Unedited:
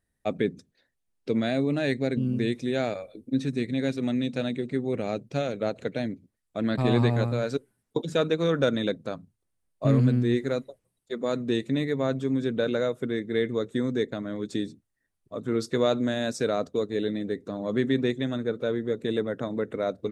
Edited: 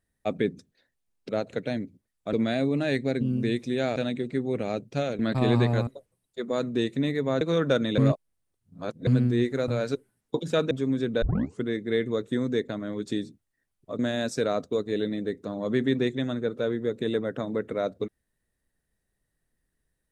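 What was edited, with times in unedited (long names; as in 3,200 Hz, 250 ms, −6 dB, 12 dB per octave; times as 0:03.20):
0:02.92–0:04.35: remove
0:05.58–0:06.62: move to 0:01.29
0:07.30–0:08.33: swap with 0:10.60–0:12.14
0:08.90–0:09.99: reverse
0:12.65: tape start 0.40 s
0:15.42–0:16.02: remove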